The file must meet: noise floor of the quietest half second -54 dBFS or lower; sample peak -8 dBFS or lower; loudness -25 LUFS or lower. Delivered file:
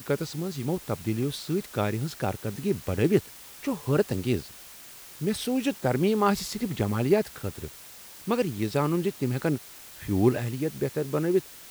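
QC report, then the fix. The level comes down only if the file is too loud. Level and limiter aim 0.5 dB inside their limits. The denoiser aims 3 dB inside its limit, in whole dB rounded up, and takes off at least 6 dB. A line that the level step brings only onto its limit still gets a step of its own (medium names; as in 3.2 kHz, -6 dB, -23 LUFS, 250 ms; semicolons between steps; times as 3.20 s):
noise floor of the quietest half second -46 dBFS: fail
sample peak -9.0 dBFS: pass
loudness -28.0 LUFS: pass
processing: noise reduction 11 dB, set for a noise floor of -46 dBFS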